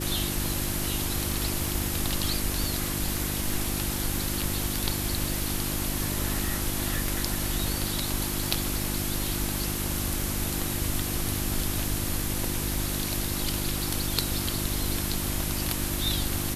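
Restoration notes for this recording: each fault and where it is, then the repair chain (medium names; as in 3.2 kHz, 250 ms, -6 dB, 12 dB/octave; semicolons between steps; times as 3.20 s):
crackle 37 per s -34 dBFS
hum 50 Hz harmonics 7 -33 dBFS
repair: de-click; de-hum 50 Hz, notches 7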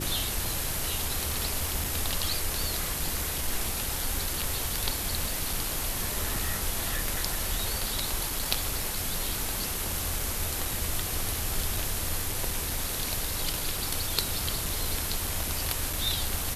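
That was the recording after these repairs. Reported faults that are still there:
nothing left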